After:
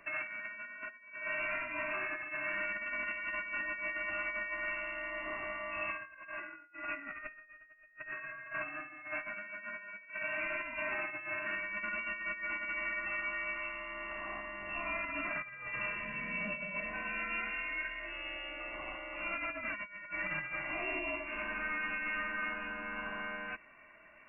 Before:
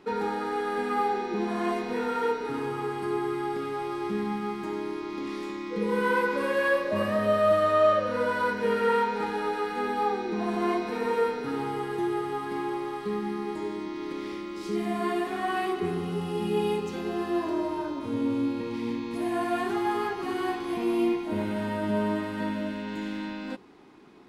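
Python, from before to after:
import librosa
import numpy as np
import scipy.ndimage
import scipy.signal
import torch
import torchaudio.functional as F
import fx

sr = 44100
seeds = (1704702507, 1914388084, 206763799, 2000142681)

y = scipy.signal.sosfilt(scipy.signal.butter(2, 1200.0, 'highpass', fs=sr, output='sos'), x)
y = y + 0.64 * np.pad(y, (int(2.5 * sr / 1000.0), 0))[:len(y)]
y = fx.over_compress(y, sr, threshold_db=-39.0, ratio=-0.5)
y = fx.freq_invert(y, sr, carrier_hz=3100)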